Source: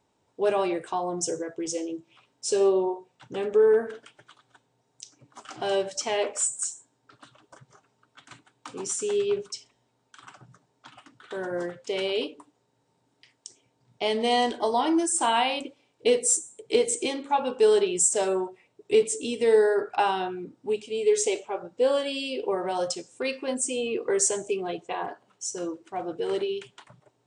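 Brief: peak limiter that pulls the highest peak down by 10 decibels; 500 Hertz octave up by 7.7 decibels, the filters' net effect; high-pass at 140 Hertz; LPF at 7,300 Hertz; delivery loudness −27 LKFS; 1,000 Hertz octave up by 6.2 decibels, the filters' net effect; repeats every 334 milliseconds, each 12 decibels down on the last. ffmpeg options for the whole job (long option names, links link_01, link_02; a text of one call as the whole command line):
ffmpeg -i in.wav -af "highpass=140,lowpass=7300,equalizer=frequency=500:width_type=o:gain=8.5,equalizer=frequency=1000:width_type=o:gain=4.5,alimiter=limit=-12dB:level=0:latency=1,aecho=1:1:334|668|1002:0.251|0.0628|0.0157,volume=-4dB" out.wav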